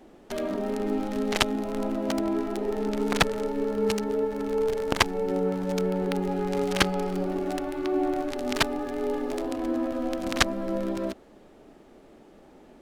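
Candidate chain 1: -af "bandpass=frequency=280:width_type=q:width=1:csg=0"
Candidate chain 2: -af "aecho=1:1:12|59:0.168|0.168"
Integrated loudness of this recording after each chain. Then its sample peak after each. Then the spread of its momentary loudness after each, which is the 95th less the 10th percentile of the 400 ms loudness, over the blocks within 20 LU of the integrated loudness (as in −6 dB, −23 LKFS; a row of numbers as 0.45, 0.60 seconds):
−31.0, −27.5 LKFS; −12.0, −2.0 dBFS; 4, 5 LU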